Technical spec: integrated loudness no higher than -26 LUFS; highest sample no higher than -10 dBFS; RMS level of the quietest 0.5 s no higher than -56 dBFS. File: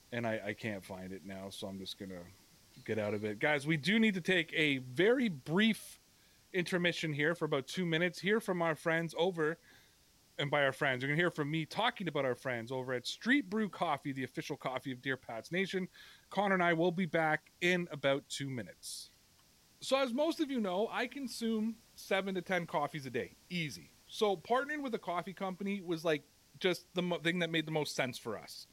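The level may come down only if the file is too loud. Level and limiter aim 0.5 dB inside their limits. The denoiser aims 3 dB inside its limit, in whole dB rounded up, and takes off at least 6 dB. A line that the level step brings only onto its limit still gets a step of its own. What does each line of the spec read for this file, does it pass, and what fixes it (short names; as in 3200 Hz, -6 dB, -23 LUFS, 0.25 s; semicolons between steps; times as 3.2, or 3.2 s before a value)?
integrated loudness -35.0 LUFS: OK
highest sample -17.5 dBFS: OK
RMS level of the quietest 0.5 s -67 dBFS: OK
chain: none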